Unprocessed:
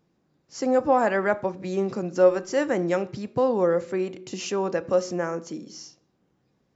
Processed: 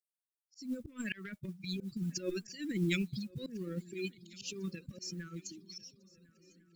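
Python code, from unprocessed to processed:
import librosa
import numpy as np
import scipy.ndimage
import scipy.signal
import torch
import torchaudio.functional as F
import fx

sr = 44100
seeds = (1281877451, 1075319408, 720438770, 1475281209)

y = fx.bin_expand(x, sr, power=3.0)
y = fx.peak_eq(y, sr, hz=4400.0, db=11.5, octaves=1.6)
y = fx.transient(y, sr, attack_db=-11, sustain_db=9)
y = scipy.signal.sosfilt(scipy.signal.cheby1(2, 1.0, [220.0, 2900.0], 'bandstop', fs=sr, output='sos'), y)
y = fx.mod_noise(y, sr, seeds[0], snr_db=29)
y = fx.auto_swell(y, sr, attack_ms=337.0)
y = fx.echo_swing(y, sr, ms=1400, ratio=3, feedback_pct=47, wet_db=-23)
y = y * 10.0 ** (5.5 / 20.0)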